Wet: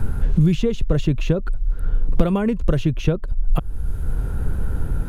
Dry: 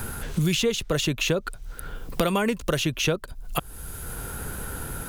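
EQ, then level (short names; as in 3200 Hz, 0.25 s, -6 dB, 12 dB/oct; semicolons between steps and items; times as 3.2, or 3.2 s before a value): tilt -4 dB/oct; -2.5 dB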